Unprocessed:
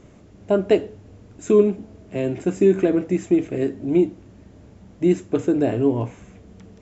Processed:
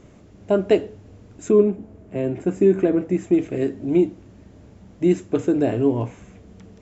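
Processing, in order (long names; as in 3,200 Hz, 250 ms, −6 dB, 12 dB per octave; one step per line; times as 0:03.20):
0:01.48–0:03.32: parametric band 4,900 Hz −12 dB → −5.5 dB 2.1 octaves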